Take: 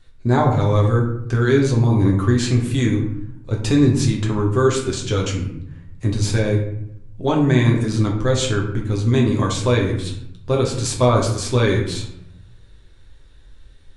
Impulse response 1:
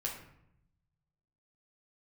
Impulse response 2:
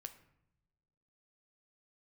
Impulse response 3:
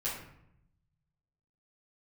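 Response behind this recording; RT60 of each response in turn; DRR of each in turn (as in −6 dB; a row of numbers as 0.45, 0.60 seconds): 1; 0.75 s, non-exponential decay, 0.75 s; −2.0, 8.0, −9.0 decibels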